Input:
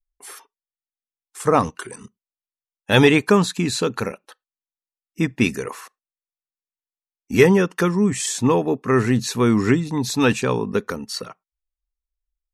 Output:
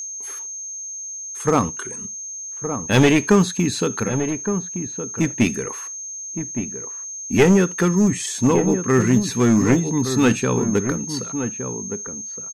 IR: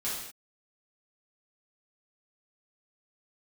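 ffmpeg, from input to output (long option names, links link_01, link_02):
-filter_complex "[0:a]firequalizer=gain_entry='entry(280,0);entry(610,-6);entry(1500,-3);entry(6800,-7)':delay=0.05:min_phase=1,aeval=exprs='val(0)+0.0316*sin(2*PI*6400*n/s)':channel_layout=same,aeval=exprs='clip(val(0),-1,0.188)':channel_layout=same,asplit=2[link_01][link_02];[link_02]adelay=1166,volume=-8dB,highshelf=frequency=4000:gain=-26.2[link_03];[link_01][link_03]amix=inputs=2:normalize=0,asplit=2[link_04][link_05];[1:a]atrim=start_sample=2205,atrim=end_sample=3969[link_06];[link_05][link_06]afir=irnorm=-1:irlink=0,volume=-21dB[link_07];[link_04][link_07]amix=inputs=2:normalize=0,volume=2dB"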